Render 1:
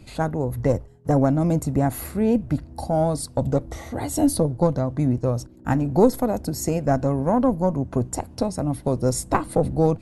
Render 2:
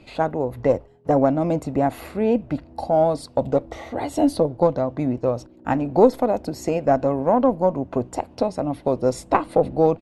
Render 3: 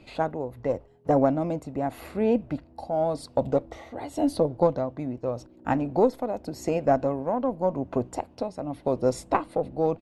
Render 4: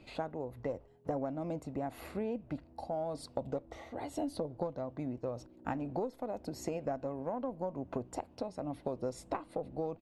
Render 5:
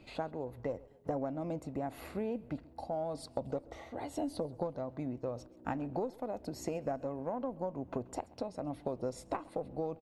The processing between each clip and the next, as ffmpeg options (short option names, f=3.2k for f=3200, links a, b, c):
-af "firequalizer=gain_entry='entry(110,0);entry(270,8);entry(590,13);entry(1600,8);entry(2600,13);entry(6000,1);entry(10000,-5)':delay=0.05:min_phase=1,volume=-8dB"
-af "tremolo=f=0.88:d=0.51,volume=-3dB"
-af "acompressor=threshold=-28dB:ratio=6,volume=-5dB"
-af "aecho=1:1:132|264|396:0.0708|0.0333|0.0156"